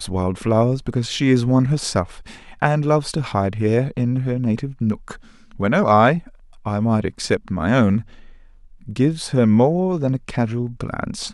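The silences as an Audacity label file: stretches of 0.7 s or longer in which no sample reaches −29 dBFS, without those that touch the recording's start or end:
8.010000	8.880000	silence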